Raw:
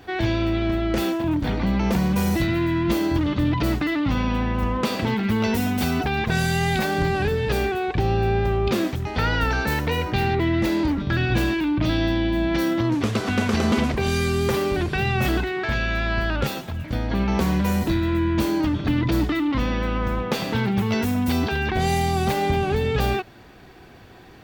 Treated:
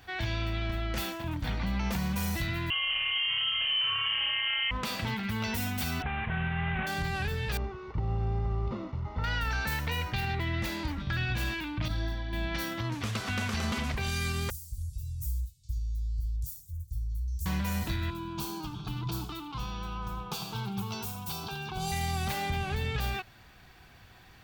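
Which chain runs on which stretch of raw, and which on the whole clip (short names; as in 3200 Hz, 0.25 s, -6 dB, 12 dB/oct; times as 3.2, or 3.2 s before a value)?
2.7–4.71 inverted band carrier 3100 Hz + flutter echo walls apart 4.8 m, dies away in 1.1 s
6.02–6.87 CVSD 16 kbps + doubler 37 ms -11 dB
7.57–9.24 delta modulation 32 kbps, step -27.5 dBFS + polynomial smoothing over 65 samples + notch 740 Hz, Q 5.9
11.88–12.33 bell 2700 Hz -12 dB 0.71 oct + notch 5000 Hz, Q 18 + detuned doubles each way 16 cents
14.5–17.46 inverse Chebyshev band-stop 420–1700 Hz, stop band 80 dB + short-mantissa float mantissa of 8-bit
18.1–21.92 fixed phaser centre 380 Hz, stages 8 + echo 87 ms -17 dB
whole clip: bell 360 Hz -13.5 dB 1.9 oct; limiter -18 dBFS; high shelf 11000 Hz +3 dB; gain -4 dB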